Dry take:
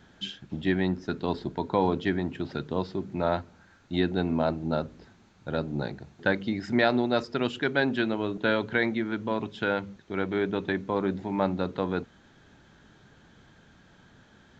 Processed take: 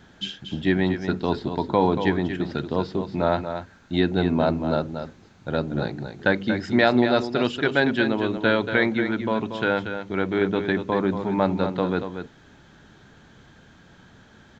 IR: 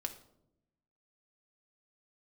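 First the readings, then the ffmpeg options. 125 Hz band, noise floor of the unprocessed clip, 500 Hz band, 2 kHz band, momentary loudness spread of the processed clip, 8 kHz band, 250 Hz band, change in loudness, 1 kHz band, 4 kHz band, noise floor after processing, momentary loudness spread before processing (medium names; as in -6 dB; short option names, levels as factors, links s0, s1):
+5.0 dB, -58 dBFS, +5.0 dB, +5.0 dB, 10 LU, no reading, +5.0 dB, +5.0 dB, +5.0 dB, +5.0 dB, -52 dBFS, 8 LU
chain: -af "aecho=1:1:234:0.376,volume=1.68"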